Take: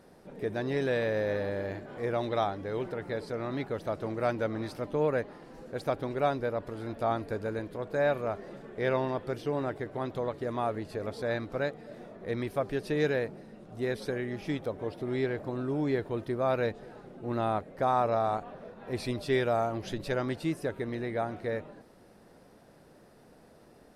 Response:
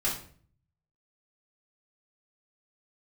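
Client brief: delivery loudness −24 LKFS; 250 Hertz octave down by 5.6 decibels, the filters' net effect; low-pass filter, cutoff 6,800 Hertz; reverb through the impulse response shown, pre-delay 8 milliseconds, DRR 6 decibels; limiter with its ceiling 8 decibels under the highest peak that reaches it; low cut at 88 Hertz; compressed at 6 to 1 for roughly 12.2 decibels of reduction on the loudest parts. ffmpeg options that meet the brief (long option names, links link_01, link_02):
-filter_complex "[0:a]highpass=88,lowpass=6800,equalizer=frequency=250:width_type=o:gain=-7.5,acompressor=threshold=-37dB:ratio=6,alimiter=level_in=9.5dB:limit=-24dB:level=0:latency=1,volume=-9.5dB,asplit=2[link_01][link_02];[1:a]atrim=start_sample=2205,adelay=8[link_03];[link_02][link_03]afir=irnorm=-1:irlink=0,volume=-13.5dB[link_04];[link_01][link_04]amix=inputs=2:normalize=0,volume=19dB"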